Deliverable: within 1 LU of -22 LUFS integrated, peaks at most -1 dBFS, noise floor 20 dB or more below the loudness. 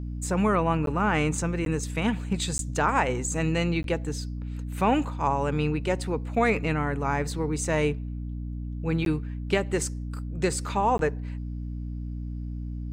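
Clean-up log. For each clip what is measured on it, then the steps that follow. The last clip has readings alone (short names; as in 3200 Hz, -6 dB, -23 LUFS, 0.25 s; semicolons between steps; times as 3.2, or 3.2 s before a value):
dropouts 6; longest dropout 12 ms; hum 60 Hz; harmonics up to 300 Hz; hum level -31 dBFS; loudness -27.5 LUFS; peak -10.5 dBFS; loudness target -22.0 LUFS
-> interpolate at 0.86/1.65/2.58/3.83/9.05/10.98, 12 ms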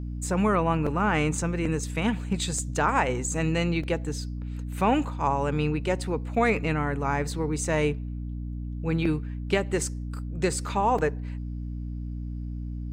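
dropouts 0; hum 60 Hz; harmonics up to 300 Hz; hum level -31 dBFS
-> notches 60/120/180/240/300 Hz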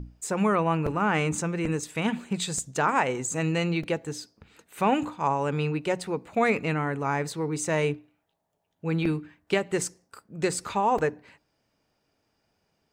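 hum none; loudness -27.5 LUFS; peak -10.5 dBFS; loudness target -22.0 LUFS
-> gain +5.5 dB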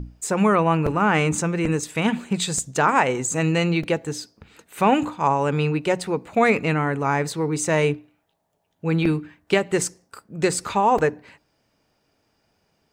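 loudness -22.0 LUFS; peak -5.0 dBFS; noise floor -69 dBFS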